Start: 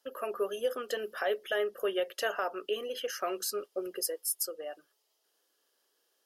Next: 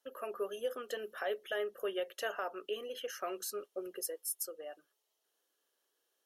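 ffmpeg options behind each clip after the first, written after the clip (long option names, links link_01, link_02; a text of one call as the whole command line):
ffmpeg -i in.wav -af "bandreject=frequency=4900:width=7.3,volume=-5.5dB" out.wav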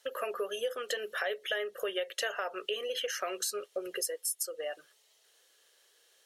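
ffmpeg -i in.wav -af "equalizer=frequency=125:width_type=o:width=1:gain=7,equalizer=frequency=250:width_type=o:width=1:gain=-8,equalizer=frequency=500:width_type=o:width=1:gain=7,equalizer=frequency=2000:width_type=o:width=1:gain=10,equalizer=frequency=4000:width_type=o:width=1:gain=8,equalizer=frequency=8000:width_type=o:width=1:gain=9,acompressor=threshold=-41dB:ratio=3,volume=7dB" out.wav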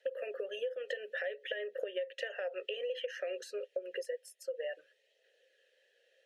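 ffmpeg -i in.wav -filter_complex "[0:a]aphaser=in_gain=1:out_gain=1:delay=1.6:decay=0.22:speed=0.57:type=triangular,asplit=3[link_01][link_02][link_03];[link_01]bandpass=frequency=530:width_type=q:width=8,volume=0dB[link_04];[link_02]bandpass=frequency=1840:width_type=q:width=8,volume=-6dB[link_05];[link_03]bandpass=frequency=2480:width_type=q:width=8,volume=-9dB[link_06];[link_04][link_05][link_06]amix=inputs=3:normalize=0,acompressor=threshold=-43dB:ratio=6,volume=9dB" out.wav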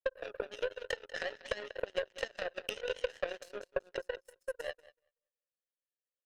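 ffmpeg -i in.wav -filter_complex "[0:a]asplit=2[link_01][link_02];[link_02]aecho=0:1:190|380|570|760:0.422|0.164|0.0641|0.025[link_03];[link_01][link_03]amix=inputs=2:normalize=0,aeval=exprs='0.0841*(cos(1*acos(clip(val(0)/0.0841,-1,1)))-cos(1*PI/2))+0.0299*(cos(2*acos(clip(val(0)/0.0841,-1,1)))-cos(2*PI/2))+0.00376*(cos(4*acos(clip(val(0)/0.0841,-1,1)))-cos(4*PI/2))+0.0119*(cos(7*acos(clip(val(0)/0.0841,-1,1)))-cos(7*PI/2))+0.000531*(cos(8*acos(clip(val(0)/0.0841,-1,1)))-cos(8*PI/2))':channel_layout=same,volume=3dB" out.wav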